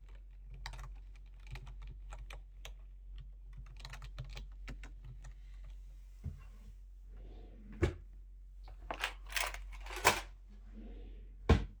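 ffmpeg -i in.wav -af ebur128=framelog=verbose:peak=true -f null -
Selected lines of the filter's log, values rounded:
Integrated loudness:
  I:         -39.9 LUFS
  Threshold: -52.7 LUFS
Loudness range:
  LRA:        14.4 LU
  Threshold: -64.0 LUFS
  LRA low:   -52.9 LUFS
  LRA high:  -38.5 LUFS
True peak:
  Peak:       -8.6 dBFS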